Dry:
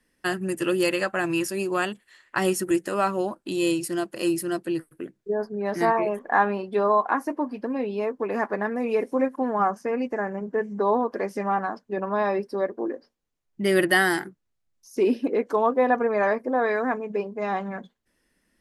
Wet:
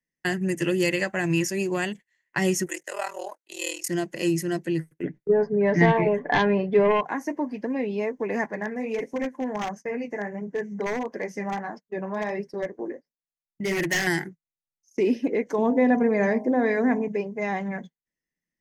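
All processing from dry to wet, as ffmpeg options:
-filter_complex "[0:a]asettb=1/sr,asplit=3[s0][s1][s2];[s0]atrim=end=2.664[s3];[s1]atrim=start=2.66:end=3.89,asetpts=PTS-STARTPTS,afade=t=in:d=0.004:c=qsin,afade=t=out:st=1.226:d=0.004:c=qsin,highpass=f=520:w=0.5412,highpass=f=520:w=1.3066,highshelf=f=6700:g=9.5,aeval=exprs='val(0)*sin(2*PI*20*n/s)':c=same[s4];[s2]atrim=start=3.886[s5];[s3][s4]acrossfade=d=0.004:c1=hsin:c2=qsin[s6];[s6][s5]acrossfade=d=0.004:c1=qsin:c2=hsin,asettb=1/sr,asplit=3[s7][s8][s9];[s7]atrim=end=5.034[s10];[s8]atrim=start=5.03:end=7.05,asetpts=PTS-STARTPTS,afade=t=in:d=0.004:c=qsin,afade=t=out:st=2.016:d=0.004:c=qsin,lowpass=2400,aecho=1:1:6.9:0.48,atrim=end_sample=89082,aeval=exprs='0.422*sin(PI/2*1.58*val(0)/0.422)':c=same[s11];[s9]atrim=start=7.046[s12];[s10][s11]acrossfade=d=0.004:c1=hsin:c2=qsin[s13];[s13][s12]acrossfade=d=0.004:c1=qsin:c2=hsin,asettb=1/sr,asplit=3[s14][s15][s16];[s14]atrim=end=8.464[s17];[s15]atrim=start=8.46:end=14.07,asetpts=PTS-STARTPTS,afade=t=in:d=0.004:c=qsin,afade=t=out:st=5.606:d=0.004:c=qsin,flanger=delay=4.4:depth=7.5:regen=-46:speed=1.5:shape=triangular,aeval=exprs='0.0944*(abs(mod(val(0)/0.0944+3,4)-2)-1)':c=same[s18];[s16]atrim=start=14.066[s19];[s17][s18]acrossfade=d=0.004:c1=hsin:c2=qsin[s20];[s20][s19]acrossfade=d=0.004:c1=qsin:c2=hsin,asettb=1/sr,asplit=3[s21][s22][s23];[s21]atrim=end=15.584[s24];[s22]atrim=start=15.58:end=17.08,asetpts=PTS-STARTPTS,afade=t=in:d=0.004:c=qsin,afade=t=out:st=1.496:d=0.004:c=qsin,equalizer=f=230:w=0.66:g=8.5,bandreject=f=52.35:t=h:w=4,bandreject=f=104.7:t=h:w=4,bandreject=f=157.05:t=h:w=4,bandreject=f=209.4:t=h:w=4,bandreject=f=261.75:t=h:w=4,bandreject=f=314.1:t=h:w=4,bandreject=f=366.45:t=h:w=4,bandreject=f=418.8:t=h:w=4,bandreject=f=471.15:t=h:w=4,bandreject=f=523.5:t=h:w=4,bandreject=f=575.85:t=h:w=4,bandreject=f=628.2:t=h:w=4,bandreject=f=680.55:t=h:w=4,bandreject=f=732.9:t=h:w=4,bandreject=f=785.25:t=h:w=4,bandreject=f=837.6:t=h:w=4,bandreject=f=889.95:t=h:w=4,bandreject=f=942.3:t=h:w=4,bandreject=f=994.65:t=h:w=4,bandreject=f=1047:t=h:w=4[s25];[s23]atrim=start=17.076[s26];[s24][s25]acrossfade=d=0.004:c1=hsin:c2=qsin[s27];[s27][s26]acrossfade=d=0.004:c1=qsin:c2=hsin,acrossover=split=340|3000[s28][s29][s30];[s29]acompressor=threshold=0.0447:ratio=2[s31];[s28][s31][s30]amix=inputs=3:normalize=0,equalizer=f=160:t=o:w=0.33:g=12,equalizer=f=1250:t=o:w=0.33:g=-11,equalizer=f=2000:t=o:w=0.33:g=10,equalizer=f=4000:t=o:w=0.33:g=-4,equalizer=f=6300:t=o:w=0.33:g=11,equalizer=f=10000:t=o:w=0.33:g=-8,agate=range=0.0708:threshold=0.0112:ratio=16:detection=peak"

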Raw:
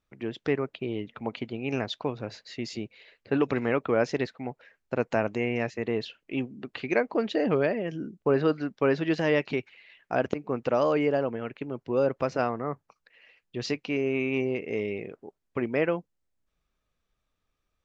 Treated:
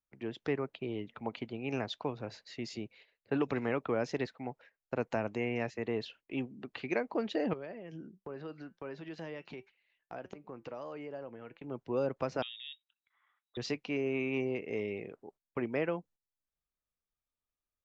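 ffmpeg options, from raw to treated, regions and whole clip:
-filter_complex "[0:a]asettb=1/sr,asplit=3[s0][s1][s2];[s0]atrim=end=7.534[s3];[s1]atrim=start=7.53:end=11.64,asetpts=PTS-STARTPTS,afade=t=in:d=0.004:c=qsin,afade=t=out:st=4.106:d=0.004:c=qsin,acompressor=threshold=0.0224:ratio=2.5:attack=3.2:release=140:knee=1:detection=peak,flanger=delay=5:depth=1.4:regen=81:speed=1.4:shape=triangular[s4];[s2]atrim=start=11.636[s5];[s3][s4]acrossfade=d=0.004:c1=hsin:c2=qsin[s6];[s6][s5]acrossfade=d=0.004:c1=qsin:c2=hsin,asettb=1/sr,asplit=3[s7][s8][s9];[s7]atrim=end=12.424[s10];[s8]atrim=start=12.42:end=13.57,asetpts=PTS-STARTPTS,afade=t=in:d=0.004:c=qsin,afade=t=out:st=1.146:d=0.004:c=qsin,acompressor=threshold=0.00282:ratio=1.5:attack=3.2:release=140:knee=1:detection=peak,lowpass=f=3300:t=q:w=0.5098,lowpass=f=3300:t=q:w=0.6013,lowpass=f=3300:t=q:w=0.9,lowpass=f=3300:t=q:w=2.563,afreqshift=-3900[s11];[s9]atrim=start=13.566[s12];[s10][s11]acrossfade=d=0.004:c1=hsin:c2=qsin[s13];[s13][s12]acrossfade=d=0.004:c1=qsin:c2=hsin,agate=range=0.251:threshold=0.00282:ratio=16:detection=peak,equalizer=f=860:t=o:w=0.73:g=3,acrossover=split=320|3000[s14][s15][s16];[s15]acompressor=threshold=0.0631:ratio=6[s17];[s14][s17][s16]amix=inputs=3:normalize=0,volume=0.501"

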